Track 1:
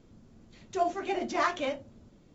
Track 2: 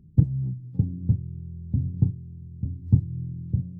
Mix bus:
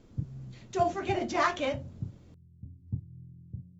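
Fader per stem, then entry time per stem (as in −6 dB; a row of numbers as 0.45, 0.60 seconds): +1.0, −16.0 decibels; 0.00, 0.00 seconds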